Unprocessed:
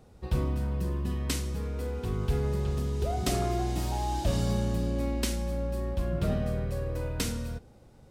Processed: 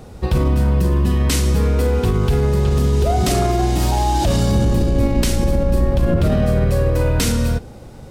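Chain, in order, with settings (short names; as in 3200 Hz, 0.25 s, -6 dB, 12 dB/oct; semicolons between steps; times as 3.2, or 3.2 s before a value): 4.51–6.29 octaver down 1 oct, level 0 dB; maximiser +25 dB; gain -7.5 dB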